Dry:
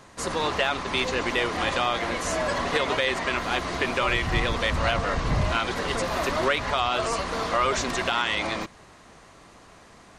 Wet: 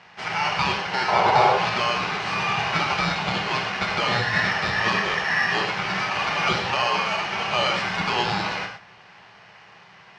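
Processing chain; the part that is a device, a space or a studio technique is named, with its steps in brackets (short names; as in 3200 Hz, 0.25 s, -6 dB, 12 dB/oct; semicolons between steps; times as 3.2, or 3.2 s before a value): ring modulator pedal into a guitar cabinet (polarity switched at an audio rate 1800 Hz; speaker cabinet 98–4500 Hz, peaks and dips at 110 Hz +8 dB, 180 Hz +9 dB, 270 Hz -6 dB, 890 Hz +7 dB, 3600 Hz -6 dB); 1.08–1.57 band shelf 640 Hz +13.5 dB; non-linear reverb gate 0.15 s flat, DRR 2 dB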